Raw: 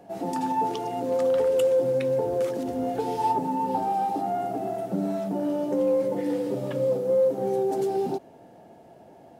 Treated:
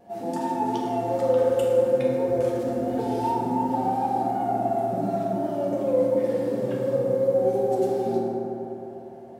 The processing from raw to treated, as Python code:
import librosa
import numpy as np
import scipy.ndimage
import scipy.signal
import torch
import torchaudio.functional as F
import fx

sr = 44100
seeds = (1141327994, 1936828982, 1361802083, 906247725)

y = fx.vibrato(x, sr, rate_hz=2.8, depth_cents=61.0)
y = fx.rev_fdn(y, sr, rt60_s=3.4, lf_ratio=1.0, hf_ratio=0.35, size_ms=26.0, drr_db=-4.5)
y = F.gain(torch.from_numpy(y), -5.0).numpy()